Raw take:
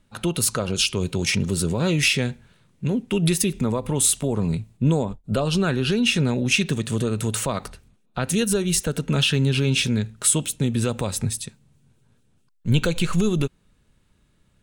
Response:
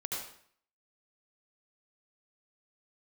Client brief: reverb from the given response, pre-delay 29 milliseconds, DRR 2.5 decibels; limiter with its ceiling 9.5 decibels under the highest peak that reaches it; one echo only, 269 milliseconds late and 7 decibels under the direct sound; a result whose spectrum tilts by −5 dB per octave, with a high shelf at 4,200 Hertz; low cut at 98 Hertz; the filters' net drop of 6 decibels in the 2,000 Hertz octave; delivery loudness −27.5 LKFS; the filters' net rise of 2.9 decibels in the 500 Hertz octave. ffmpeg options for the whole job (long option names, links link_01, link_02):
-filter_complex "[0:a]highpass=98,equalizer=frequency=500:width_type=o:gain=4,equalizer=frequency=2000:width_type=o:gain=-7.5,highshelf=frequency=4200:gain=-5,alimiter=limit=-18.5dB:level=0:latency=1,aecho=1:1:269:0.447,asplit=2[link_01][link_02];[1:a]atrim=start_sample=2205,adelay=29[link_03];[link_02][link_03]afir=irnorm=-1:irlink=0,volume=-5dB[link_04];[link_01][link_04]amix=inputs=2:normalize=0,volume=-2dB"